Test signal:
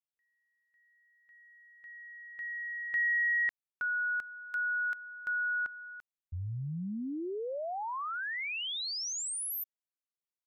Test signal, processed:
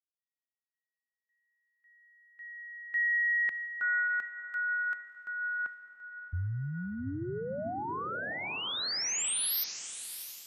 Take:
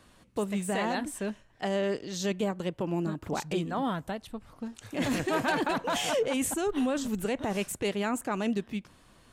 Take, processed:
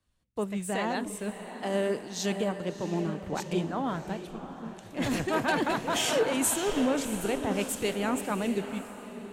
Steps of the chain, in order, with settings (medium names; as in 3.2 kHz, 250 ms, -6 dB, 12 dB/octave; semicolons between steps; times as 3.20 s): echo that smears into a reverb 687 ms, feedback 49%, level -7 dB; three bands expanded up and down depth 70%